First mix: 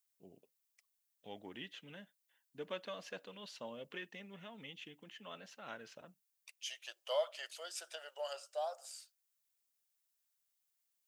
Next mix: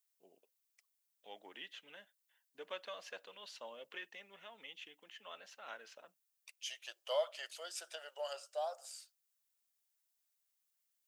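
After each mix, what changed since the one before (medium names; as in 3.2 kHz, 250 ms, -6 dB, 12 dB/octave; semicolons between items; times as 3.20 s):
first voice: add high-pass 540 Hz 12 dB/octave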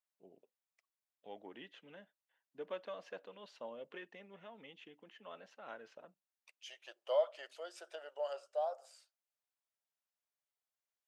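master: add tilt EQ -4.5 dB/octave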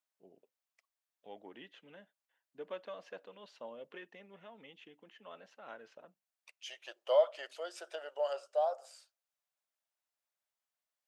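second voice +5.0 dB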